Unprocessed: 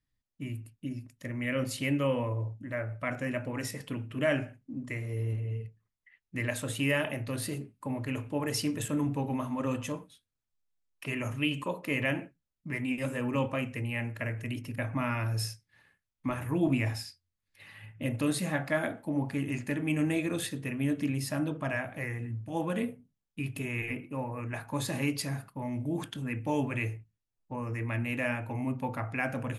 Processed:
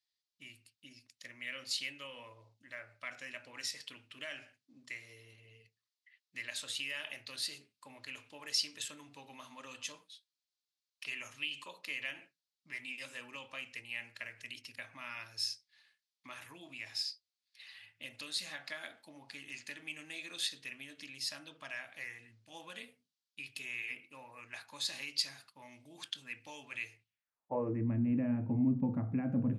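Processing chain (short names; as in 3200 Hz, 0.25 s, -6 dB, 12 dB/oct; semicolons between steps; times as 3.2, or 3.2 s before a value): low shelf 110 Hz +5.5 dB; compressor, threshold -29 dBFS, peak gain reduction 8 dB; band-pass sweep 4400 Hz -> 210 Hz, 26.99–27.84; gain +8.5 dB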